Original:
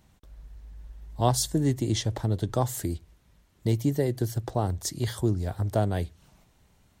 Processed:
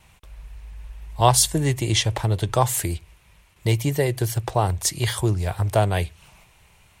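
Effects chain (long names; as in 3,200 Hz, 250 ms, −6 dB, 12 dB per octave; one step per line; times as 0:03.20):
graphic EQ with 15 bands 250 Hz −11 dB, 1,000 Hz +5 dB, 2,500 Hz +12 dB, 10,000 Hz +7 dB
noise gate with hold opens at −54 dBFS
level +6 dB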